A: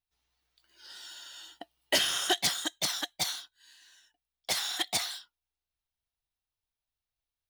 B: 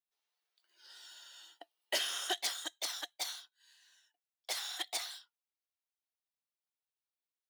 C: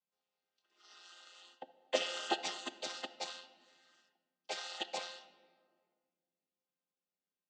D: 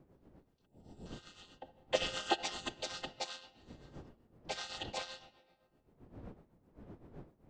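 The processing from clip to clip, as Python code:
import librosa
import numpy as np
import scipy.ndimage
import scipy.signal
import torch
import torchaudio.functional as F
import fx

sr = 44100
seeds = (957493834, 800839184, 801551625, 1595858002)

y1 = scipy.signal.sosfilt(scipy.signal.butter(4, 360.0, 'highpass', fs=sr, output='sos'), x)
y1 = y1 * 10.0 ** (-7.5 / 20.0)
y2 = fx.chord_vocoder(y1, sr, chord='minor triad', root=53)
y2 = fx.notch(y2, sr, hz=1700.0, q=6.8)
y2 = fx.room_shoebox(y2, sr, seeds[0], volume_m3=2500.0, walls='mixed', distance_m=0.52)
y3 = fx.dmg_wind(y2, sr, seeds[1], corner_hz=330.0, level_db=-56.0)
y3 = fx.spec_box(y3, sr, start_s=0.66, length_s=0.4, low_hz=960.0, high_hz=7100.0, gain_db=-16)
y3 = y3 * (1.0 - 0.6 / 2.0 + 0.6 / 2.0 * np.cos(2.0 * np.pi * 7.8 * (np.arange(len(y3)) / sr)))
y3 = y3 * 10.0 ** (3.0 / 20.0)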